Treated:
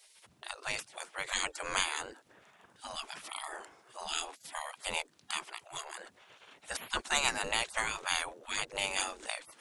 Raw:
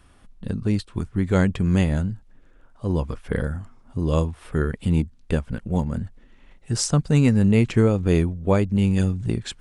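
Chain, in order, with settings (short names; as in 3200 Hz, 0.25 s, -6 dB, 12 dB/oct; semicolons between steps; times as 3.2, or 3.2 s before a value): spectral gate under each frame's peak -30 dB weak; gain +8.5 dB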